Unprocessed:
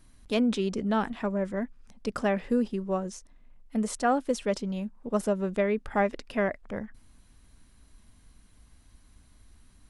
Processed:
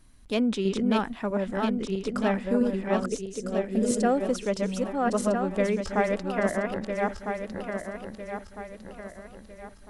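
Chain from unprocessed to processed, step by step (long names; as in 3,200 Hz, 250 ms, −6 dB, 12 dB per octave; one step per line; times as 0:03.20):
feedback delay that plays each chunk backwards 652 ms, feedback 62%, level −2.5 dB
0:03.07–0:04.29: graphic EQ with 10 bands 500 Hz +6 dB, 1,000 Hz −9 dB, 8,000 Hz +4 dB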